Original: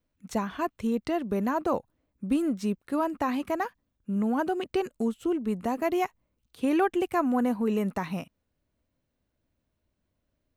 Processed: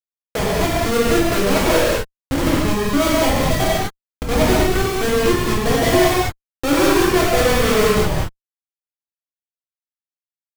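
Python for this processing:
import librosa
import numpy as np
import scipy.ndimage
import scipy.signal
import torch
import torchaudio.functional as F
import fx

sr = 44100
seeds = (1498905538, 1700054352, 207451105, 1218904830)

p1 = fx.graphic_eq(x, sr, hz=(250, 500, 8000), db=(-6, 11, 6))
p2 = fx.level_steps(p1, sr, step_db=23)
p3 = p1 + F.gain(torch.from_numpy(p2), 1.0).numpy()
p4 = fx.schmitt(p3, sr, flips_db=-21.0)
p5 = fx.rev_gated(p4, sr, seeds[0], gate_ms=270, shape='flat', drr_db=-8.0)
y = F.gain(torch.from_numpy(p5), 1.5).numpy()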